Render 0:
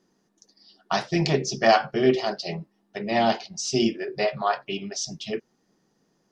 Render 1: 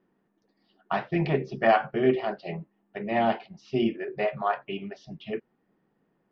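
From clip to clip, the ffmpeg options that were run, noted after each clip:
-af "lowpass=f=2.7k:w=0.5412,lowpass=f=2.7k:w=1.3066,volume=-2.5dB"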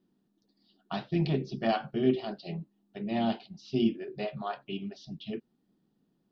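-af "equalizer=f=250:t=o:w=1:g=4,equalizer=f=500:t=o:w=1:g=-7,equalizer=f=1k:t=o:w=1:g=-6,equalizer=f=2k:t=o:w=1:g=-12,equalizer=f=4k:t=o:w=1:g=10,volume=-1.5dB"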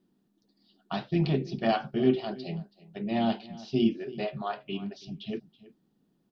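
-af "aecho=1:1:327:0.106,volume=2dB"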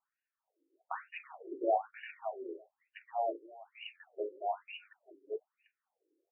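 -af "afftfilt=real='re*between(b*sr/1024,380*pow(2100/380,0.5+0.5*sin(2*PI*1.1*pts/sr))/1.41,380*pow(2100/380,0.5+0.5*sin(2*PI*1.1*pts/sr))*1.41)':imag='im*between(b*sr/1024,380*pow(2100/380,0.5+0.5*sin(2*PI*1.1*pts/sr))/1.41,380*pow(2100/380,0.5+0.5*sin(2*PI*1.1*pts/sr))*1.41)':win_size=1024:overlap=0.75"

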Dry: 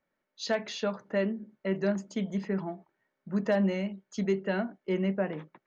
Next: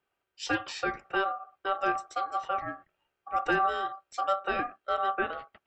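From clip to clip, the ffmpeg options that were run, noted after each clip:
-af "aeval=exprs='val(0)*sin(2*PI*970*n/s)':c=same,volume=2.5dB"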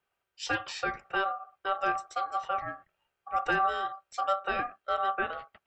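-af "equalizer=f=310:t=o:w=0.79:g=-6.5"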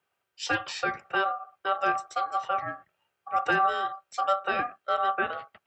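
-af "highpass=f=82:w=0.5412,highpass=f=82:w=1.3066,volume=3dB"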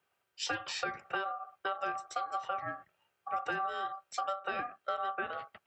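-af "acompressor=threshold=-32dB:ratio=6"

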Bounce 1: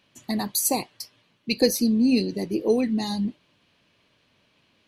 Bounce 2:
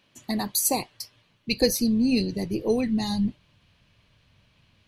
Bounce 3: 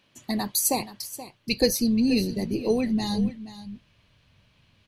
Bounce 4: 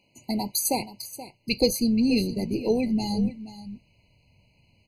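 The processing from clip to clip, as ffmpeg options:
-af "asubboost=boost=9:cutoff=110"
-af "aecho=1:1:477:0.188"
-af "afftfilt=real='re*eq(mod(floor(b*sr/1024/1000),2),0)':imag='im*eq(mod(floor(b*sr/1024/1000),2),0)':win_size=1024:overlap=0.75"

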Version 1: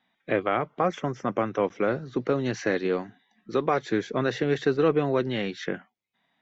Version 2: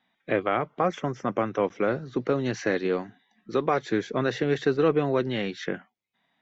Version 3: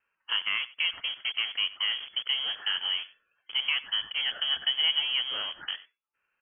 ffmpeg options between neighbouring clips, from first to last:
-af anull
-filter_complex "[0:a]acrossover=split=360|950[a][b][c];[a]acrusher=bits=5:mix=0:aa=0.000001[d];[d][b][c]amix=inputs=3:normalize=0,aecho=1:1:93:0.112,lowpass=f=2.9k:t=q:w=0.5098,lowpass=f=2.9k:t=q:w=0.6013,lowpass=f=2.9k:t=q:w=0.9,lowpass=f=2.9k:t=q:w=2.563,afreqshift=-3400,volume=-4.5dB"

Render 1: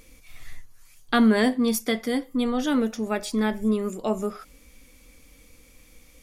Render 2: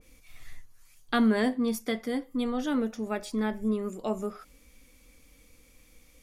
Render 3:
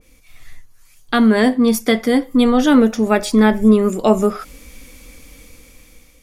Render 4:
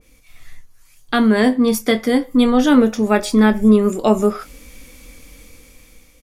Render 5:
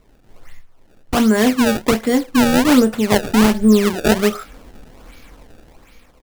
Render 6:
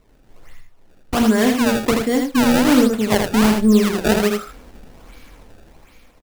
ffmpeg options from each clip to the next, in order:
-af "adynamicequalizer=threshold=0.00891:dfrequency=2200:dqfactor=0.7:tfrequency=2200:tqfactor=0.7:attack=5:release=100:ratio=0.375:range=3.5:mode=cutabove:tftype=highshelf,volume=-5dB"
-af "dynaudnorm=f=600:g=5:m=12dB,volume=5.5dB"
-filter_complex "[0:a]asplit=2[a][b];[b]adelay=24,volume=-12dB[c];[a][c]amix=inputs=2:normalize=0,volume=-1dB"
-af "acrusher=samples=24:mix=1:aa=0.000001:lfo=1:lforange=38.4:lforate=1.3"
-af "aecho=1:1:80:0.596,volume=-2.5dB"

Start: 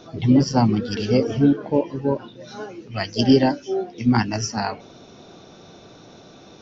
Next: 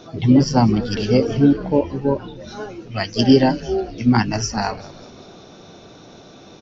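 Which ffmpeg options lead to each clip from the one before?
-filter_complex "[0:a]asplit=6[a][b][c][d][e][f];[b]adelay=197,afreqshift=-100,volume=-19dB[g];[c]adelay=394,afreqshift=-200,volume=-23.7dB[h];[d]adelay=591,afreqshift=-300,volume=-28.5dB[i];[e]adelay=788,afreqshift=-400,volume=-33.2dB[j];[f]adelay=985,afreqshift=-500,volume=-37.9dB[k];[a][g][h][i][j][k]amix=inputs=6:normalize=0,volume=2.5dB"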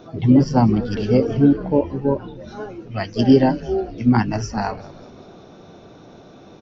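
-af "equalizer=f=6k:t=o:w=2.6:g=-9.5"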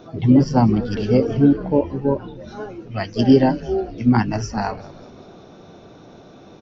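-af anull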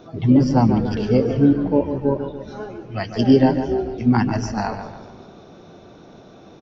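-filter_complex "[0:a]asplit=2[a][b];[b]adelay=144,lowpass=f=3.9k:p=1,volume=-9dB,asplit=2[c][d];[d]adelay=144,lowpass=f=3.9k:p=1,volume=0.46,asplit=2[e][f];[f]adelay=144,lowpass=f=3.9k:p=1,volume=0.46,asplit=2[g][h];[h]adelay=144,lowpass=f=3.9k:p=1,volume=0.46,asplit=2[i][j];[j]adelay=144,lowpass=f=3.9k:p=1,volume=0.46[k];[a][c][e][g][i][k]amix=inputs=6:normalize=0,volume=-1dB"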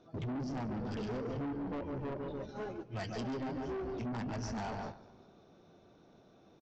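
-af "agate=range=-13dB:threshold=-33dB:ratio=16:detection=peak,acompressor=threshold=-25dB:ratio=3,aresample=16000,asoftclip=type=tanh:threshold=-31dB,aresample=44100,volume=-4.5dB"

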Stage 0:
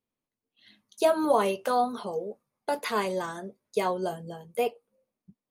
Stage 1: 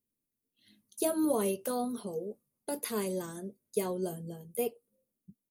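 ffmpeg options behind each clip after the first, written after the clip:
-af "firequalizer=gain_entry='entry(310,0);entry(780,-14);entry(11000,8)':delay=0.05:min_phase=1"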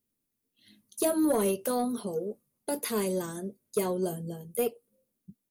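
-af "aeval=exprs='0.2*(cos(1*acos(clip(val(0)/0.2,-1,1)))-cos(1*PI/2))+0.0282*(cos(5*acos(clip(val(0)/0.2,-1,1)))-cos(5*PI/2))':c=same"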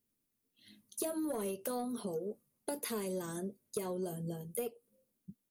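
-af "acompressor=threshold=-34dB:ratio=6,volume=-1dB"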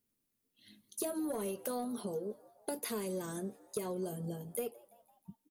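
-filter_complex "[0:a]asplit=5[a][b][c][d][e];[b]adelay=169,afreqshift=110,volume=-23dB[f];[c]adelay=338,afreqshift=220,volume=-27.7dB[g];[d]adelay=507,afreqshift=330,volume=-32.5dB[h];[e]adelay=676,afreqshift=440,volume=-37.2dB[i];[a][f][g][h][i]amix=inputs=5:normalize=0"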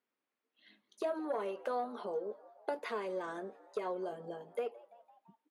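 -af "highpass=590,lowpass=2k,volume=7dB"

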